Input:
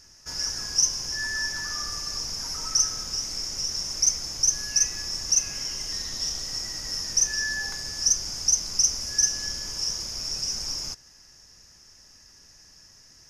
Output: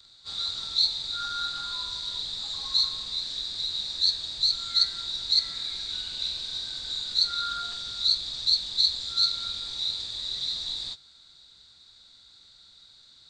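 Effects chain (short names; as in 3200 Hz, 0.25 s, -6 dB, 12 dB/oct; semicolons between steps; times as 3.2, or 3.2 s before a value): inharmonic rescaling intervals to 89%; high shelf 2500 Hz +10 dB; Doppler distortion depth 0.1 ms; gain -6 dB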